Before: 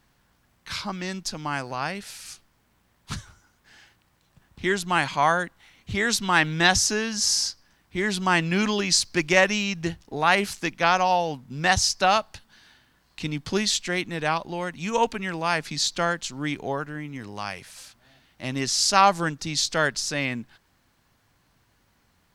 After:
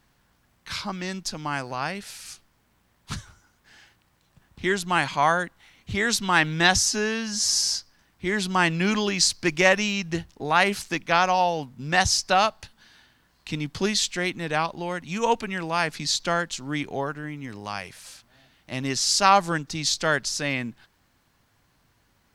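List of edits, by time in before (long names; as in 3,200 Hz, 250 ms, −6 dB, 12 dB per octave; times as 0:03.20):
0:06.83–0:07.40: time-stretch 1.5×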